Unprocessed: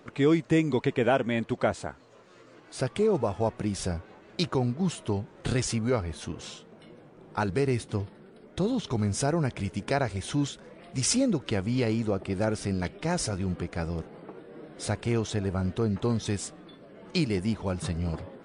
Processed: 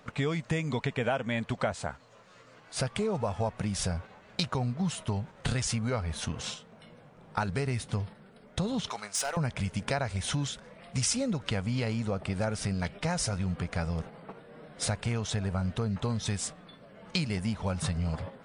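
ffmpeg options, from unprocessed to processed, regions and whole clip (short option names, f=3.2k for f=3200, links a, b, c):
-filter_complex "[0:a]asettb=1/sr,asplit=3[a][b][c];[a]atrim=end=8.904[d];[b]atrim=start=8.9:end=9.37,asetpts=PTS-STARTPTS,afade=t=in:d=0.004:c=qsin,afade=t=out:st=0.466:d=0.004:c=qsin,highpass=770,asoftclip=type=hard:threshold=-29dB[e];[c]atrim=start=9.366[f];[d][e]acrossfade=d=0.004:c1=hsin:c2=qsin[g];[g][f]acrossfade=d=0.004:c1=qsin:c2=hsin,agate=range=-6dB:threshold=-41dB:ratio=16:detection=peak,equalizer=f=340:w=2.3:g=-14.5,acompressor=threshold=-36dB:ratio=3,volume=7dB"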